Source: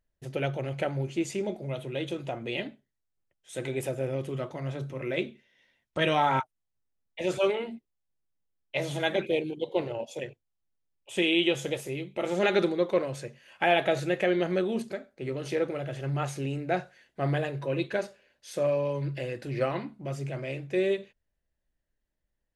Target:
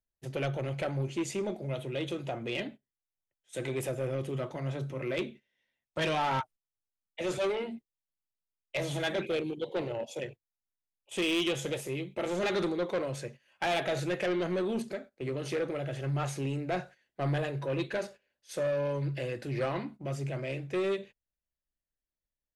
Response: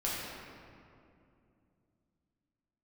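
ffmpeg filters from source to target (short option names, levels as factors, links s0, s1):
-filter_complex "[0:a]agate=range=0.224:threshold=0.00562:ratio=16:detection=peak,acrossover=split=110|4500[s0][s1][s2];[s1]asoftclip=type=tanh:threshold=0.0501[s3];[s0][s3][s2]amix=inputs=3:normalize=0"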